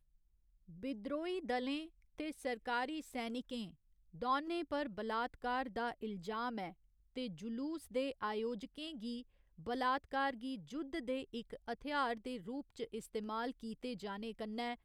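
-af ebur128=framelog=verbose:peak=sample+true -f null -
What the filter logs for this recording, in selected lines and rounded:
Integrated loudness:
  I:         -41.3 LUFS
  Threshold: -51.5 LUFS
Loudness range:
  LRA:         2.2 LU
  Threshold: -61.3 LUFS
  LRA low:   -42.5 LUFS
  LRA high:  -40.3 LUFS
Sample peak:
  Peak:      -24.4 dBFS
True peak:
  Peak:      -24.4 dBFS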